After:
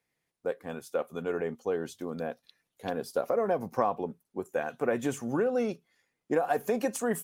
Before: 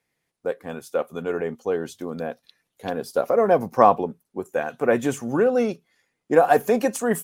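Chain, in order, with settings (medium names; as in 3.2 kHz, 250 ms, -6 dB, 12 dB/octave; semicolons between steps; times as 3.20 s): compression 4:1, threshold -19 dBFS, peak gain reduction 9 dB; trim -5 dB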